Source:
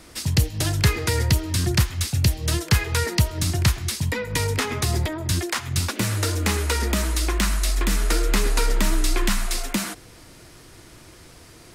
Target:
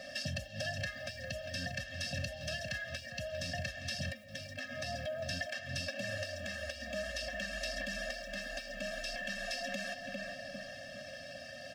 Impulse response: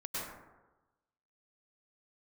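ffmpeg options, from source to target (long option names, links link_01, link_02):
-filter_complex "[0:a]asplit=3[link_01][link_02][link_03];[link_01]bandpass=frequency=530:width_type=q:width=8,volume=0dB[link_04];[link_02]bandpass=frequency=1840:width_type=q:width=8,volume=-6dB[link_05];[link_03]bandpass=frequency=2480:width_type=q:width=8,volume=-9dB[link_06];[link_04][link_05][link_06]amix=inputs=3:normalize=0,equalizer=frequency=5300:width=3.8:gain=11,asplit=2[link_07][link_08];[link_08]adelay=400,lowpass=frequency=2700:poles=1,volume=-12.5dB,asplit=2[link_09][link_10];[link_10]adelay=400,lowpass=frequency=2700:poles=1,volume=0.42,asplit=2[link_11][link_12];[link_12]adelay=400,lowpass=frequency=2700:poles=1,volume=0.42,asplit=2[link_13][link_14];[link_14]adelay=400,lowpass=frequency=2700:poles=1,volume=0.42[link_15];[link_09][link_11][link_13][link_15]amix=inputs=4:normalize=0[link_16];[link_07][link_16]amix=inputs=2:normalize=0,acompressor=threshold=-50dB:ratio=6,bandreject=frequency=2200:width=7.3,asplit=2[link_17][link_18];[link_18]alimiter=level_in=22dB:limit=-24dB:level=0:latency=1:release=43,volume=-22dB,volume=2dB[link_19];[link_17][link_19]amix=inputs=2:normalize=0,acrusher=bits=9:mode=log:mix=0:aa=0.000001,afftfilt=real='re*eq(mod(floor(b*sr/1024/260),2),0)':imag='im*eq(mod(floor(b*sr/1024/260),2),0)':win_size=1024:overlap=0.75,volume=12.5dB"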